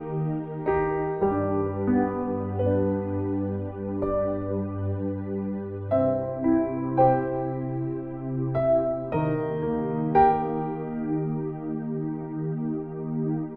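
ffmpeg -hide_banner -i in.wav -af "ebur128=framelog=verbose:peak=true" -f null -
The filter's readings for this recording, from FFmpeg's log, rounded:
Integrated loudness:
  I:         -26.6 LUFS
  Threshold: -36.6 LUFS
Loudness range:
  LRA:         3.0 LU
  Threshold: -46.4 LUFS
  LRA low:   -28.2 LUFS
  LRA high:  -25.2 LUFS
True peak:
  Peak:       -7.8 dBFS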